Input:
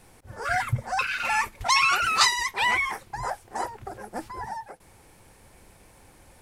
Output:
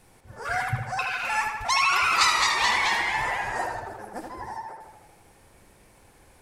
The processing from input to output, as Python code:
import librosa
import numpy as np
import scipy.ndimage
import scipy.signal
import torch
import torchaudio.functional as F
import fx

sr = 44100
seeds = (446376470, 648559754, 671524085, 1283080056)

y = fx.echo_pitch(x, sr, ms=188, semitones=-1, count=3, db_per_echo=-3.0, at=(1.77, 3.8))
y = fx.echo_tape(y, sr, ms=78, feedback_pct=67, wet_db=-4.0, lp_hz=4700.0, drive_db=5.0, wow_cents=28)
y = y * librosa.db_to_amplitude(-3.0)